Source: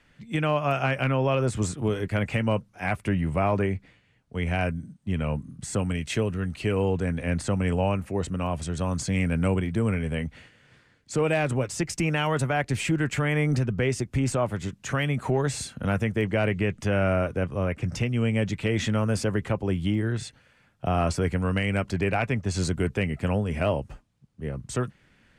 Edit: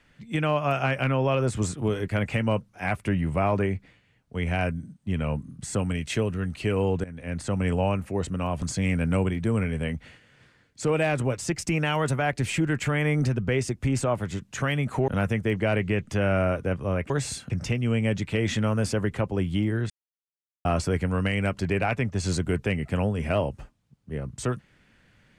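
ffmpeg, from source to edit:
ffmpeg -i in.wav -filter_complex "[0:a]asplit=8[link_01][link_02][link_03][link_04][link_05][link_06][link_07][link_08];[link_01]atrim=end=7.04,asetpts=PTS-STARTPTS,afade=type=out:start_time=7.036:duration=0.004:curve=hsin:silence=0.141254[link_09];[link_02]atrim=start=7.04:end=8.622,asetpts=PTS-STARTPTS,afade=type=in:duration=0.59:silence=0.141254[link_10];[link_03]atrim=start=8.928:end=15.392[link_11];[link_04]atrim=start=15.788:end=17.812[link_12];[link_05]atrim=start=15.388:end=15.792[link_13];[link_06]atrim=start=17.808:end=20.21,asetpts=PTS-STARTPTS,afade=type=out:start_time=2.398:duration=0.004:curve=hsin[link_14];[link_07]atrim=start=20.21:end=20.96,asetpts=PTS-STARTPTS,volume=0[link_15];[link_08]atrim=start=20.96,asetpts=PTS-STARTPTS,afade=type=in:duration=0.004:curve=hsin[link_16];[link_09][link_10]concat=n=2:v=0:a=1[link_17];[link_17][link_11]acrossfade=duration=0.004:curve1=hsin:curve2=hsin[link_18];[link_18][link_12]acrossfade=duration=0.004:curve1=hsin:curve2=hsin[link_19];[link_19][link_13]acrossfade=duration=0.004:curve1=hsin:curve2=hsin[link_20];[link_14][link_15][link_16]concat=n=3:v=0:a=1[link_21];[link_20][link_21]acrossfade=duration=0.004:curve1=hsin:curve2=hsin" out.wav

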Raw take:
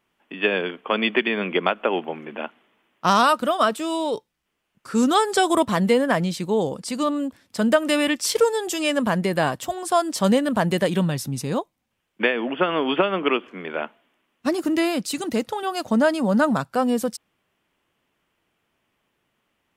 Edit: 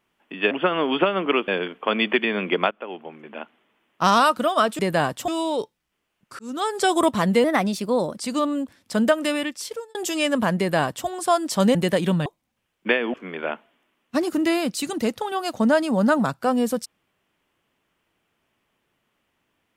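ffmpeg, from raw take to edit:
ffmpeg -i in.wav -filter_complex "[0:a]asplit=13[link_01][link_02][link_03][link_04][link_05][link_06][link_07][link_08][link_09][link_10][link_11][link_12][link_13];[link_01]atrim=end=0.512[link_14];[link_02]atrim=start=12.478:end=13.452[link_15];[link_03]atrim=start=0.508:end=1.74,asetpts=PTS-STARTPTS,afade=type=out:start_time=1.228:duration=0.004:curve=hsin:silence=0.16788[link_16];[link_04]atrim=start=1.74:end=3.822,asetpts=PTS-STARTPTS,afade=type=in:duration=1.36:silence=0.16788[link_17];[link_05]atrim=start=9.218:end=9.712[link_18];[link_06]atrim=start=3.818:end=4.93,asetpts=PTS-STARTPTS,afade=type=out:start_time=1.108:duration=0.004:curve=hsin[link_19];[link_07]atrim=start=4.93:end=5.984,asetpts=PTS-STARTPTS,afade=type=in:duration=0.53[link_20];[link_08]atrim=start=5.98:end=6.81,asetpts=PTS-STARTPTS,asetrate=50274,aresample=44100[link_21];[link_09]atrim=start=6.806:end=8.59,asetpts=PTS-STARTPTS,afade=type=out:start_time=0.844:duration=0.94[link_22];[link_10]atrim=start=8.59:end=10.392,asetpts=PTS-STARTPTS,afade=type=in:duration=0.004:curve=hsin[link_23];[link_11]atrim=start=10.638:end=11.152[link_24];[link_12]atrim=start=11.598:end=12.482[link_25];[link_13]atrim=start=13.448[link_26];[link_14][link_15]acrossfade=duration=0.004:curve1=hsin:curve2=hsin[link_27];[link_16][link_17]concat=n=2:v=0:a=1[link_28];[link_27][link_28]acrossfade=duration=0.004:curve1=hsin:curve2=hsin[link_29];[link_29][link_18]acrossfade=duration=0.004:curve1=hsin:curve2=hsin[link_30];[link_19][link_20]concat=n=2:v=0:a=1[link_31];[link_30][link_31]acrossfade=duration=0.004:curve1=hsin:curve2=hsin[link_32];[link_32][link_21]acrossfade=duration=0.004:curve1=hsin:curve2=hsin[link_33];[link_22][link_23]concat=n=2:v=0:a=1[link_34];[link_33][link_34]acrossfade=duration=0.004:curve1=hsin:curve2=hsin[link_35];[link_35][link_24]acrossfade=duration=0.004:curve1=hsin:curve2=hsin[link_36];[link_36][link_25]acrossfade=duration=0.004:curve1=hsin:curve2=hsin[link_37];[link_37][link_26]acrossfade=duration=0.004:curve1=hsin:curve2=hsin" out.wav

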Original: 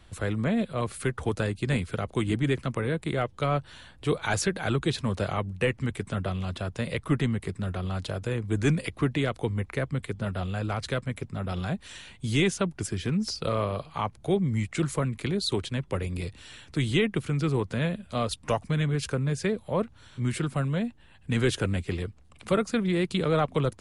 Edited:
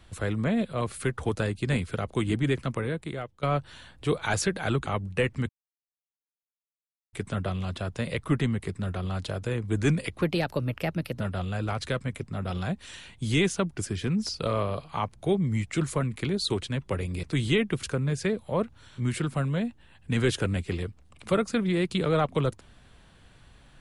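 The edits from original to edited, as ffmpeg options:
ffmpeg -i in.wav -filter_complex "[0:a]asplit=8[link_01][link_02][link_03][link_04][link_05][link_06][link_07][link_08];[link_01]atrim=end=3.43,asetpts=PTS-STARTPTS,afade=type=out:start_time=2.71:duration=0.72:silence=0.149624[link_09];[link_02]atrim=start=3.43:end=4.862,asetpts=PTS-STARTPTS,afade=type=in:duration=0.004:curve=hsin:silence=0.149624[link_10];[link_03]atrim=start=5.298:end=5.93,asetpts=PTS-STARTPTS,afade=type=out:start_time=0.628:duration=0.004:curve=hsin,apad=pad_dur=1.64[link_11];[link_04]atrim=start=5.93:end=9.024,asetpts=PTS-STARTPTS,afade=type=in:duration=0.004:curve=hsin[link_12];[link_05]atrim=start=9.02:end=10.22,asetpts=PTS-STARTPTS,asetrate=53802,aresample=44100,atrim=end_sample=43377,asetpts=PTS-STARTPTS[link_13];[link_06]atrim=start=10.216:end=16.252[link_14];[link_07]atrim=start=16.668:end=17.272[link_15];[link_08]atrim=start=19.028[link_16];[link_09][link_10]concat=n=2:v=0:a=1[link_17];[link_11][link_12]concat=n=2:v=0:a=1[link_18];[link_17][link_18]acrossfade=duration=0.004:curve1=hsin:curve2=hsin[link_19];[link_19][link_13]acrossfade=duration=0.004:curve1=hsin:curve2=hsin[link_20];[link_20][link_14]acrossfade=duration=0.004:curve1=hsin:curve2=hsin[link_21];[link_21][link_15]acrossfade=duration=0.004:curve1=hsin:curve2=hsin[link_22];[link_22][link_16]acrossfade=duration=0.004:curve1=hsin:curve2=hsin" out.wav

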